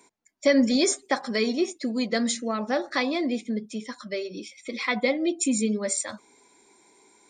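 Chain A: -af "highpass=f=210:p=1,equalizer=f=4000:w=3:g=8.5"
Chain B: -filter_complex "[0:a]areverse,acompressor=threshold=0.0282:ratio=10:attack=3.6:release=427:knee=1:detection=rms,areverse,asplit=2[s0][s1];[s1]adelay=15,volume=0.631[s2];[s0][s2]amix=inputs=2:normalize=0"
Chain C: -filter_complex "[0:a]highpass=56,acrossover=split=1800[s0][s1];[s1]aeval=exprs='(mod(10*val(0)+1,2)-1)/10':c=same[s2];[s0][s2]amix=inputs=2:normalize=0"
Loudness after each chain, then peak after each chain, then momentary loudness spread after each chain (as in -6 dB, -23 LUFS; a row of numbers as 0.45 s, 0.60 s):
-26.0 LUFS, -36.0 LUFS, -26.5 LUFS; -9.0 dBFS, -22.0 dBFS, -9.5 dBFS; 12 LU, 14 LU, 14 LU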